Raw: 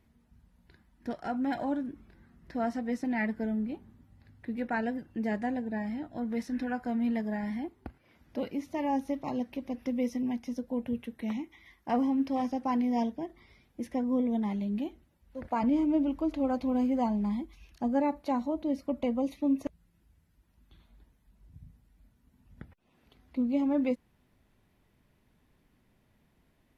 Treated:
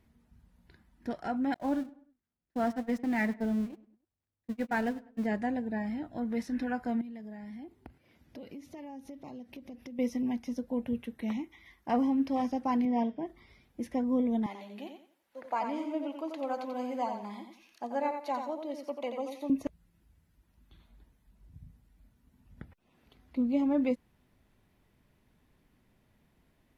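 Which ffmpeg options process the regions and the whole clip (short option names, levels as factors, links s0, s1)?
-filter_complex "[0:a]asettb=1/sr,asplit=3[s0][s1][s2];[s0]atrim=end=1.544[s3];[s1]atrim=start=1.54:end=5.26,asetpts=PTS-STARTPTS,afade=t=in:d=0.004:c=qsin,afade=t=out:st=3.716:d=0.004:c=qsin,aeval=exprs='val(0)+0.5*0.00841*sgn(val(0))':c=same,agate=range=0.00501:threshold=0.0224:ratio=16:release=100:detection=peak,asplit=2[s4][s5];[s5]adelay=100,lowpass=f=2700:p=1,volume=0.1,asplit=2[s6][s7];[s7]adelay=100,lowpass=f=2700:p=1,volume=0.43,asplit=2[s8][s9];[s9]adelay=100,lowpass=f=2700:p=1,volume=0.43[s10];[s4][s6][s8][s10]amix=inputs=4:normalize=0,atrim=end_sample=164052[s11];[s2]atrim=start=5.256[s12];[s3][s11]acrossfade=d=0.004:c1=hsin:c2=qsin[s13];[s13][s12]acrossfade=d=0.004:c1=qsin:c2=hsin,asettb=1/sr,asplit=3[s14][s15][s16];[s14]atrim=end=7.014[s17];[s15]atrim=start=7.01:end=9.99,asetpts=PTS-STARTPTS,afade=t=in:d=0.004:c=qsin,afade=t=out:st=2.976:d=0.004:c=qsin,highpass=53,equalizer=f=1200:t=o:w=1.4:g=-5.5,acompressor=threshold=0.00794:ratio=6:attack=3.2:release=140:knee=1:detection=peak[s18];[s16]atrim=start=9.986[s19];[s17][s18]acrossfade=d=0.004:c1=hsin:c2=qsin[s20];[s20][s19]acrossfade=d=0.004:c1=qsin:c2=hsin,asettb=1/sr,asplit=3[s21][s22][s23];[s21]atrim=end=12.854[s24];[s22]atrim=start=12.85:end=13.26,asetpts=PTS-STARTPTS,afade=t=in:d=0.004:c=qsin,afade=t=out:st=0.406:d=0.004:c=qsin,highpass=120,lowpass=3000,bandreject=f=213.4:t=h:w=4,bandreject=f=426.8:t=h:w=4,bandreject=f=640.2:t=h:w=4,bandreject=f=853.6:t=h:w=4,bandreject=f=1067:t=h:w=4,bandreject=f=1280.4:t=h:w=4,bandreject=f=1493.8:t=h:w=4,bandreject=f=1707.2:t=h:w=4,bandreject=f=1920.6:t=h:w=4,bandreject=f=2134:t=h:w=4,bandreject=f=2347.4:t=h:w=4,bandreject=f=2560.8:t=h:w=4,bandreject=f=2774.2:t=h:w=4,bandreject=f=2987.6:t=h:w=4,bandreject=f=3201:t=h:w=4,bandreject=f=3414.4:t=h:w=4,bandreject=f=3627.8:t=h:w=4,bandreject=f=3841.2:t=h:w=4,bandreject=f=4054.6:t=h:w=4,bandreject=f=4268:t=h:w=4,bandreject=f=4481.4:t=h:w=4,bandreject=f=4694.8:t=h:w=4,bandreject=f=4908.2:t=h:w=4,bandreject=f=5121.6:t=h:w=4,bandreject=f=5335:t=h:w=4,bandreject=f=5548.4:t=h:w=4,bandreject=f=5761.8:t=h:w=4[s25];[s23]atrim=start=13.256[s26];[s24][s25]acrossfade=d=0.004:c1=hsin:c2=qsin[s27];[s27][s26]acrossfade=d=0.004:c1=qsin:c2=hsin,asettb=1/sr,asplit=3[s28][s29][s30];[s28]atrim=end=14.464[s31];[s29]atrim=start=14.46:end=19.5,asetpts=PTS-STARTPTS,afade=t=in:d=0.004:c=qsin,afade=t=out:st=5.036:d=0.004:c=qsin,highpass=530,aecho=1:1:88|176|264|352:0.473|0.132|0.0371|0.0104,atrim=end_sample=222264[s32];[s30]atrim=start=19.496[s33];[s31][s32]acrossfade=d=0.004:c1=hsin:c2=qsin[s34];[s34][s33]acrossfade=d=0.004:c1=qsin:c2=hsin"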